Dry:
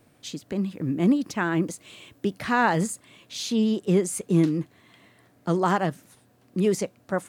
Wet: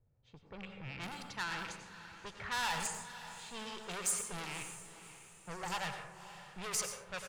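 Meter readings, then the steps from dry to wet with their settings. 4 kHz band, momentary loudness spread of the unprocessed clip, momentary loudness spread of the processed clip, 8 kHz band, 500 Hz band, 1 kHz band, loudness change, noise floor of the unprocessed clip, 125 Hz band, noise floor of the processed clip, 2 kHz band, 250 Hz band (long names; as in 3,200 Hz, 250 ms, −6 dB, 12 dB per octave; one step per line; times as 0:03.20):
−5.0 dB, 14 LU, 16 LU, −2.5 dB, −21.5 dB, −13.0 dB, −14.5 dB, −61 dBFS, −22.0 dB, −64 dBFS, −9.0 dB, −27.0 dB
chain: loose part that buzzes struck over −34 dBFS, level −30 dBFS
comb filter 2.2 ms, depth 31%
low-pass that shuts in the quiet parts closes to 330 Hz, open at −19 dBFS
time-frequency box erased 0:05.09–0:05.72, 920–4,400 Hz
soft clipping −26.5 dBFS, distortion −7 dB
guitar amp tone stack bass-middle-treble 10-0-10
feedback delay with all-pass diffusion 566 ms, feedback 41%, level −13 dB
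dense smooth reverb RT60 0.75 s, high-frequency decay 0.45×, pre-delay 80 ms, DRR 4.5 dB
level +2.5 dB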